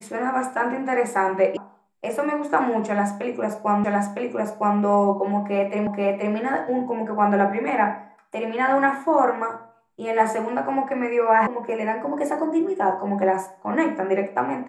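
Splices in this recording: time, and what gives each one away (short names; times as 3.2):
1.57 sound cut off
3.84 repeat of the last 0.96 s
5.87 repeat of the last 0.48 s
11.47 sound cut off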